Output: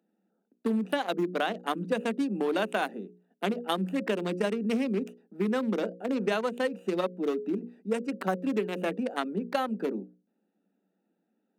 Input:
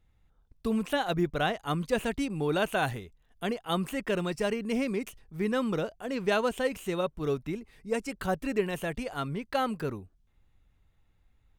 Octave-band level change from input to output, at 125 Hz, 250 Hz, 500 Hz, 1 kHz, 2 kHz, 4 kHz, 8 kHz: −4.0, +2.0, +0.5, 0.0, −1.5, −1.0, −4.5 decibels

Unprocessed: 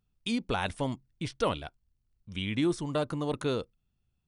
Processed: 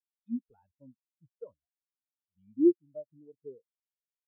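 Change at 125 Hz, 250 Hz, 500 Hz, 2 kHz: below −25 dB, +0.5 dB, −2.5 dB, below −40 dB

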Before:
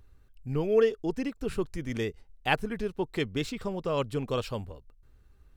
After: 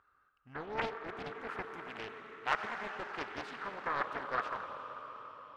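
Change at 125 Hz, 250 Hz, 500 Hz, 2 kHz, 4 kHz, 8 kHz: −19.5, −16.5, −14.5, −1.5, −9.0, −13.0 decibels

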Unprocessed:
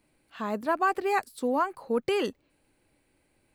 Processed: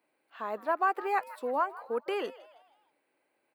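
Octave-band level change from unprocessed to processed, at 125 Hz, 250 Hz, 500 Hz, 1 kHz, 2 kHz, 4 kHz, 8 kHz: can't be measured, −11.0 dB, −4.5 dB, −1.5 dB, −3.5 dB, −7.5 dB, below −10 dB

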